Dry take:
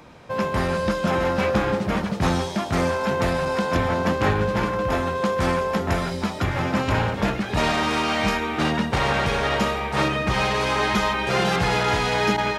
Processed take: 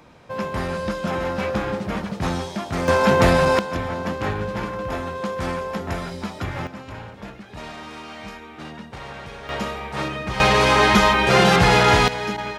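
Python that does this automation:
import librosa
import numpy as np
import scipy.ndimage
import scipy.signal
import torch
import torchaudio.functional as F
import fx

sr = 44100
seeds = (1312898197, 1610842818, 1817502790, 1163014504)

y = fx.gain(x, sr, db=fx.steps((0.0, -3.0), (2.88, 7.0), (3.59, -4.5), (6.67, -14.5), (9.49, -5.0), (10.4, 6.5), (12.08, -5.5)))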